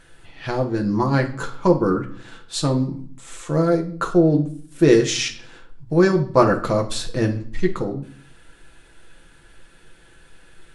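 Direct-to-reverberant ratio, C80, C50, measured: 2.0 dB, 16.5 dB, 12.0 dB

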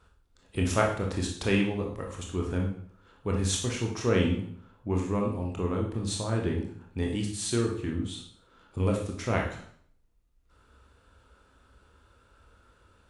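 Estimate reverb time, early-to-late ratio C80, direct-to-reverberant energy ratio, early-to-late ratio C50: 0.60 s, 9.5 dB, -0.5 dB, 5.0 dB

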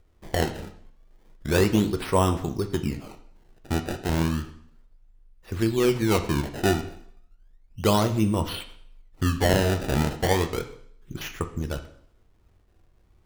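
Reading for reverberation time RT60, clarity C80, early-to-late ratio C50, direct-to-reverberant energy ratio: 0.65 s, 15.0 dB, 12.0 dB, 6.5 dB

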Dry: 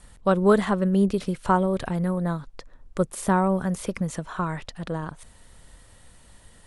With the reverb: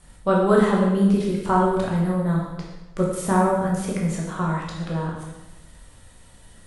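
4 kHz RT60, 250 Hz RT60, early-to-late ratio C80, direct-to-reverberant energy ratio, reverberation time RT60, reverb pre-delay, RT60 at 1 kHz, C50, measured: 0.95 s, 1.2 s, 4.5 dB, -3.5 dB, 1.1 s, 10 ms, 1.0 s, 1.5 dB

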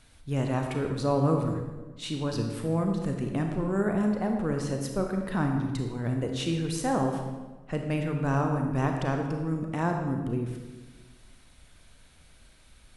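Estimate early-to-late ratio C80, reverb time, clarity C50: 6.0 dB, 1.3 s, 4.5 dB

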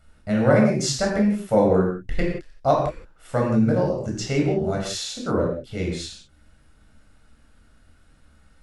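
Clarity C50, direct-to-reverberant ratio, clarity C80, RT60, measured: 3.5 dB, -1.0 dB, 6.0 dB, no single decay rate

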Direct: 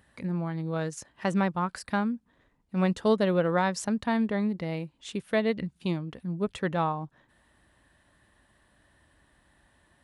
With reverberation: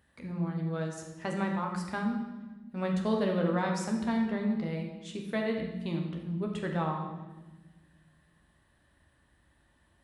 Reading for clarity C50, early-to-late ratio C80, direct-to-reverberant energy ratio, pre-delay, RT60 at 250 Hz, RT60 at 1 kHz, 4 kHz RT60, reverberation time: 4.5 dB, 6.5 dB, 1.0 dB, 12 ms, 2.2 s, 1.1 s, 1.0 s, 1.2 s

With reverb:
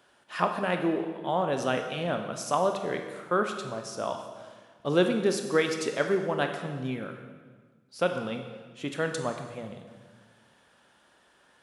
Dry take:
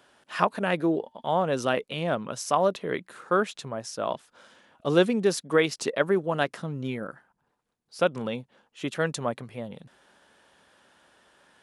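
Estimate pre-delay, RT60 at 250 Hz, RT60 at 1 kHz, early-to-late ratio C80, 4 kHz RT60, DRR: 23 ms, 1.8 s, 1.4 s, 8.5 dB, 1.3 s, 5.0 dB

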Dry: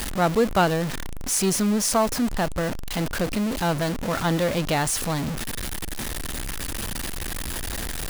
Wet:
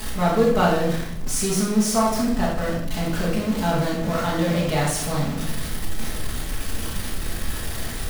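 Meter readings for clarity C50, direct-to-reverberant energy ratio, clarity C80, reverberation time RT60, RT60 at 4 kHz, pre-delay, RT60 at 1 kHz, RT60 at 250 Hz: 2.0 dB, -7.5 dB, 6.0 dB, 0.80 s, 0.65 s, 5 ms, 0.70 s, 1.2 s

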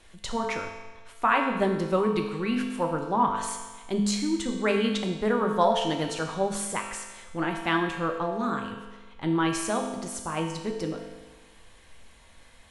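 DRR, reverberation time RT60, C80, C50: 1.5 dB, 1.3 s, 6.0 dB, 4.5 dB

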